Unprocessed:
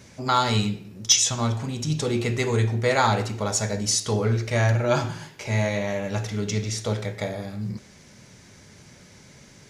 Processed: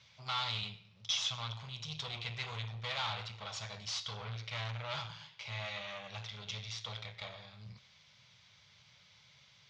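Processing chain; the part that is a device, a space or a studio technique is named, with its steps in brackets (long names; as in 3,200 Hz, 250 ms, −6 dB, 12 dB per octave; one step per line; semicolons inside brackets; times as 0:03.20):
scooped metal amplifier (tube saturation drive 25 dB, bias 0.75; loudspeaker in its box 100–4,400 Hz, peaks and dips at 130 Hz +4 dB, 250 Hz −4 dB, 370 Hz −4 dB, 1,100 Hz +3 dB, 1,700 Hz −7 dB, 3,400 Hz +6 dB; guitar amp tone stack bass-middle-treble 10-0-10)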